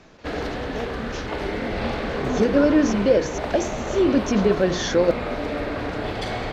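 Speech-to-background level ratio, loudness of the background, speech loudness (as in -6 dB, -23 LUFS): 7.0 dB, -28.0 LUFS, -21.0 LUFS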